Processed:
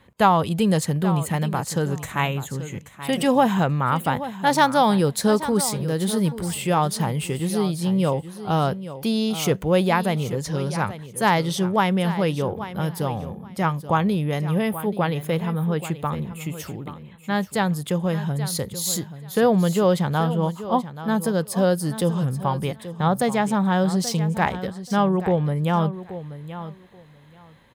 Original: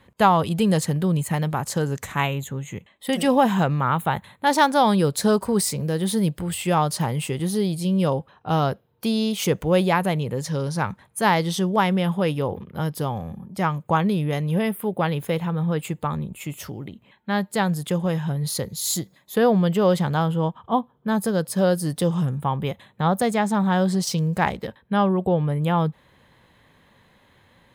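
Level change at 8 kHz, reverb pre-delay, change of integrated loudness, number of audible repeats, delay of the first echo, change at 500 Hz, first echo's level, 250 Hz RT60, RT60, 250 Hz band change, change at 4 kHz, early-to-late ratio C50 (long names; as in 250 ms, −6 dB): 0.0 dB, no reverb audible, 0.0 dB, 2, 831 ms, 0.0 dB, −13.0 dB, no reverb audible, no reverb audible, 0.0 dB, 0.0 dB, no reverb audible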